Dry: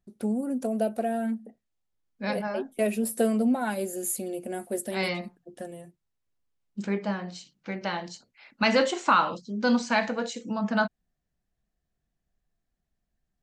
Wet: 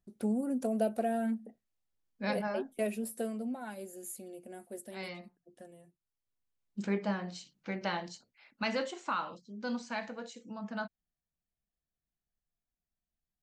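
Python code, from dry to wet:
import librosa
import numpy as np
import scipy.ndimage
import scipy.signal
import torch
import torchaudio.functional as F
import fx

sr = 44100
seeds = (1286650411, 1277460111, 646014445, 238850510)

y = fx.gain(x, sr, db=fx.line((2.53, -3.5), (3.37, -13.5), (5.8, -13.5), (6.84, -3.5), (7.94, -3.5), (8.93, -13.0)))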